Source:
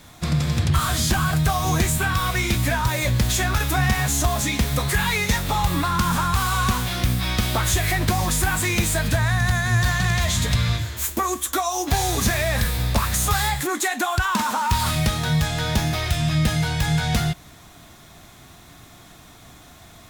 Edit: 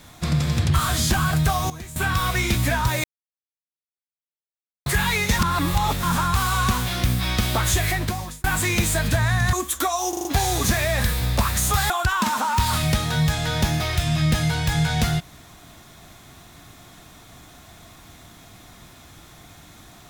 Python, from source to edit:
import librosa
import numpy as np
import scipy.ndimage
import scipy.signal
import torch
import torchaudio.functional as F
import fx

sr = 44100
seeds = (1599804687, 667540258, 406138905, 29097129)

y = fx.edit(x, sr, fx.fade_down_up(start_s=1.44, length_s=0.78, db=-16.5, fade_s=0.26, curve='log'),
    fx.silence(start_s=3.04, length_s=1.82),
    fx.reverse_span(start_s=5.39, length_s=0.64),
    fx.fade_out_span(start_s=7.83, length_s=0.61),
    fx.cut(start_s=9.53, length_s=1.73),
    fx.stutter(start_s=11.82, slice_s=0.04, count=5),
    fx.cut(start_s=13.47, length_s=0.56), tone=tone)